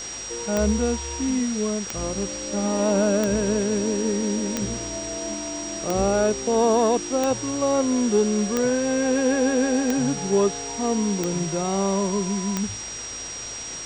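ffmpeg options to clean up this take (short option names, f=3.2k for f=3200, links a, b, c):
-af "adeclick=t=4,bandreject=f=53:t=h:w=4,bandreject=f=106:t=h:w=4,bandreject=f=159:t=h:w=4,bandreject=f=212:t=h:w=4,bandreject=f=5.7k:w=30,afwtdn=0.018"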